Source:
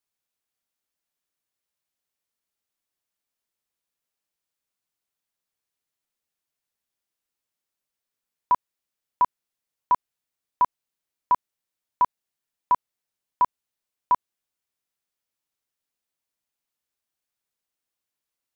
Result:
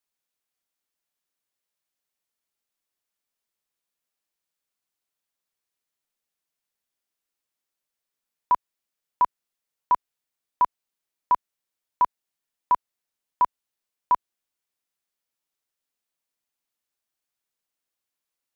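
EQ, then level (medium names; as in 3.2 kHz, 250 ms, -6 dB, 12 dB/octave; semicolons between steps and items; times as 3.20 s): peaking EQ 82 Hz -4.5 dB 2.3 oct; 0.0 dB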